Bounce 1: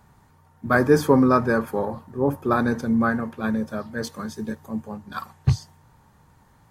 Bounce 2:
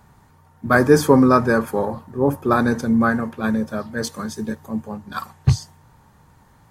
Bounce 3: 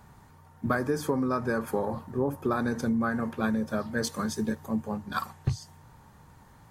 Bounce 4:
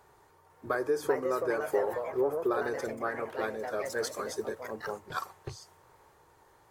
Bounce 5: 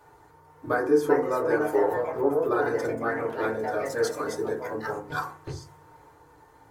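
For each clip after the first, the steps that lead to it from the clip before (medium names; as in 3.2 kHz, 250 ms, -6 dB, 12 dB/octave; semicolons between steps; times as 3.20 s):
dynamic bell 8.1 kHz, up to +5 dB, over -49 dBFS, Q 0.81; trim +3.5 dB
compression 16:1, threshold -22 dBFS, peak gain reduction 16 dB; trim -1.5 dB
resonant low shelf 290 Hz -9.5 dB, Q 3; ever faster or slower copies 501 ms, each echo +3 st, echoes 2, each echo -6 dB; trim -4.5 dB
FDN reverb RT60 0.37 s, low-frequency decay 1.45×, high-frequency decay 0.3×, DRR -3 dB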